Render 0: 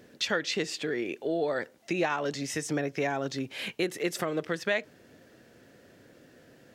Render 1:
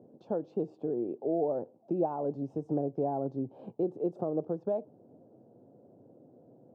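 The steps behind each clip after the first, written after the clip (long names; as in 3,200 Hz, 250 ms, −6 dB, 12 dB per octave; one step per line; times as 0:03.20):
elliptic band-pass filter 110–810 Hz, stop band 40 dB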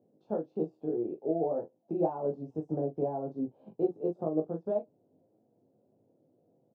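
ambience of single reflections 19 ms −3 dB, 42 ms −6 dB
expander for the loud parts 1.5 to 1, over −50 dBFS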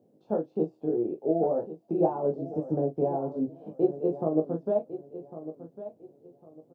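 repeating echo 1,102 ms, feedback 26%, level −13.5 dB
level +4.5 dB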